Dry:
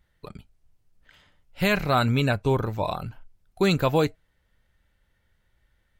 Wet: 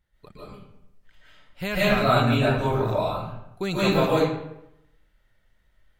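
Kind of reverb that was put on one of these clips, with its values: algorithmic reverb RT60 0.84 s, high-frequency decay 0.7×, pre-delay 105 ms, DRR -9.5 dB; trim -7.5 dB

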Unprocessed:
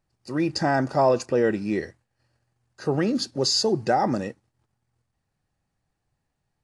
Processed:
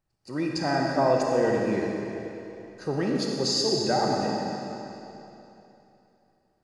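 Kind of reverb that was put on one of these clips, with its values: algorithmic reverb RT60 3.1 s, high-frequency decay 0.95×, pre-delay 10 ms, DRR -1 dB; trim -5 dB

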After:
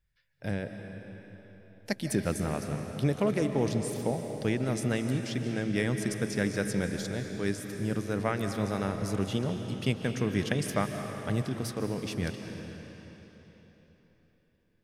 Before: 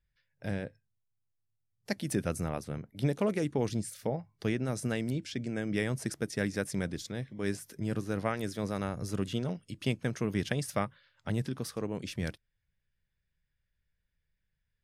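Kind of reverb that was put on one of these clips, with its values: algorithmic reverb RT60 4 s, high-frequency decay 0.9×, pre-delay 110 ms, DRR 5.5 dB; trim +2 dB

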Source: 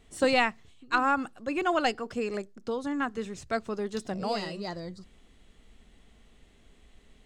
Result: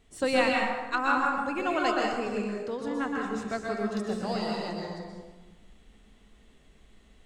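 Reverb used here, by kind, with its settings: plate-style reverb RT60 1.3 s, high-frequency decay 0.6×, pre-delay 110 ms, DRR -2 dB; trim -3.5 dB

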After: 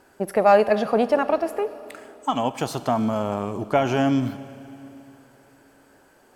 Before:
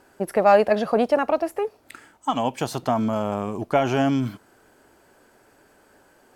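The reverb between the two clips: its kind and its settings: Schroeder reverb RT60 3.2 s, combs from 29 ms, DRR 14 dB

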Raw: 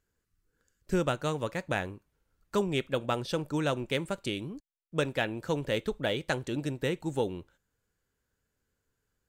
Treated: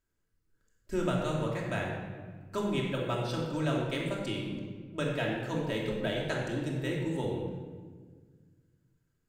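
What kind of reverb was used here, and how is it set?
simulated room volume 1600 m³, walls mixed, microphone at 2.8 m; trim -7 dB

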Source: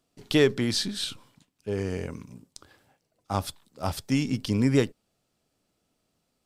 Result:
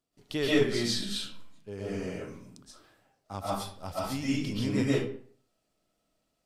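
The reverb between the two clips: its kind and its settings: algorithmic reverb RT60 0.52 s, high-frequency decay 0.7×, pre-delay 95 ms, DRR -8.5 dB; trim -11 dB

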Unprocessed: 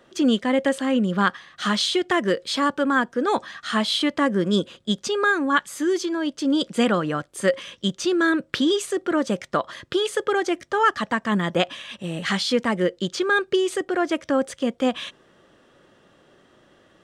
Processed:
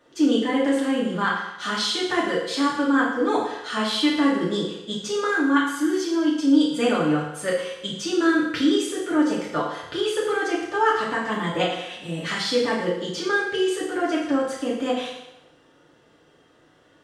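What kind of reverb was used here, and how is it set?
FDN reverb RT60 0.91 s, low-frequency decay 0.75×, high-frequency decay 0.95×, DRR -6.5 dB; trim -8 dB

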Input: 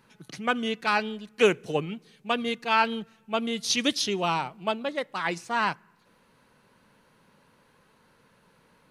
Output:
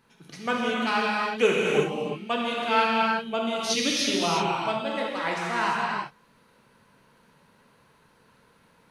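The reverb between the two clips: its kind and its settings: gated-style reverb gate 390 ms flat, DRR -4 dB; trim -3.5 dB

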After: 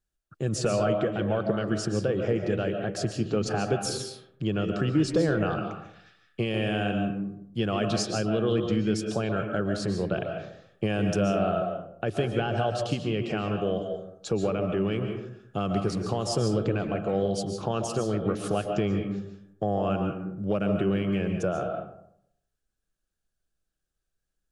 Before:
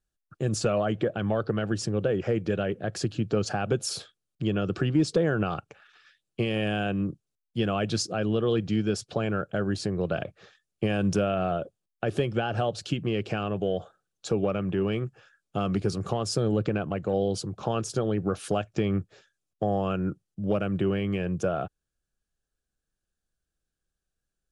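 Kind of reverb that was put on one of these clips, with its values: algorithmic reverb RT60 0.73 s, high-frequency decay 0.45×, pre-delay 100 ms, DRR 4 dB; trim -1 dB

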